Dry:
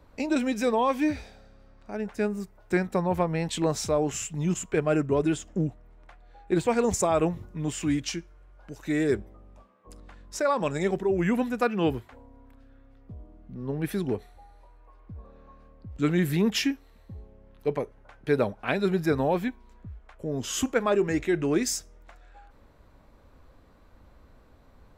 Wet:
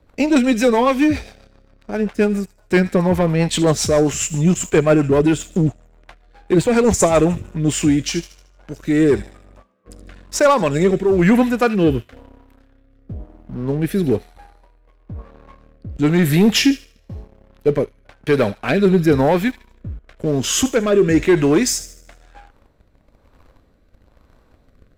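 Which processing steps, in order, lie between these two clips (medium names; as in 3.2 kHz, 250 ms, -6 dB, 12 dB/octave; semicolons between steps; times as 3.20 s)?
feedback echo behind a high-pass 76 ms, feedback 49%, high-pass 2.4 kHz, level -11.5 dB; waveshaping leveller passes 2; rotary cabinet horn 7.5 Hz, later 1 Hz, at 7.09 s; trim +6 dB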